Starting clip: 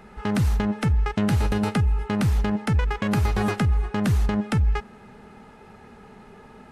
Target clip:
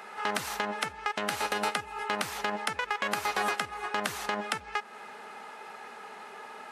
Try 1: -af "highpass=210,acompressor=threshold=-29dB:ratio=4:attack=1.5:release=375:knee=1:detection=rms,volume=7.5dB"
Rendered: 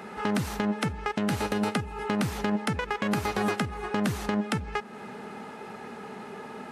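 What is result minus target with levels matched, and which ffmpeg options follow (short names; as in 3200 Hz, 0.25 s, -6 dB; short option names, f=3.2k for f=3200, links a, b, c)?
250 Hz band +11.5 dB
-af "highpass=700,acompressor=threshold=-29dB:ratio=4:attack=1.5:release=375:knee=1:detection=rms,volume=7.5dB"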